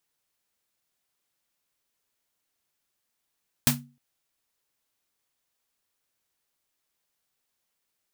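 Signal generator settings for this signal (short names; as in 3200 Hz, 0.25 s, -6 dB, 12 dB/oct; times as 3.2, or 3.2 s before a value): snare drum length 0.31 s, tones 140 Hz, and 240 Hz, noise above 590 Hz, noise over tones 4.5 dB, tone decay 0.37 s, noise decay 0.18 s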